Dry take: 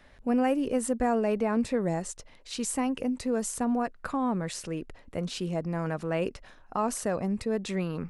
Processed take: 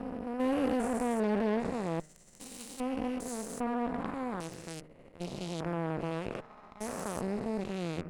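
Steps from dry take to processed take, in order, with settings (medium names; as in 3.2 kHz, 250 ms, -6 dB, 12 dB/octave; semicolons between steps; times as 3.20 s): spectrogram pixelated in time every 400 ms; Chebyshev shaper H 7 -20 dB, 8 -24 dB, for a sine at -18.5 dBFS; de-hum 154.1 Hz, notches 13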